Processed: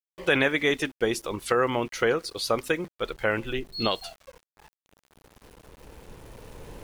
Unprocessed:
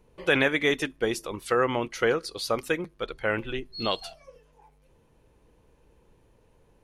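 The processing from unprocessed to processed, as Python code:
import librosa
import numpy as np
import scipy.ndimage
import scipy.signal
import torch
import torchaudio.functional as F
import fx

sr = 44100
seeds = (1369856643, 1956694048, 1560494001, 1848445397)

y = fx.recorder_agc(x, sr, target_db=-13.0, rise_db_per_s=6.8, max_gain_db=30)
y = np.where(np.abs(y) >= 10.0 ** (-47.0 / 20.0), y, 0.0)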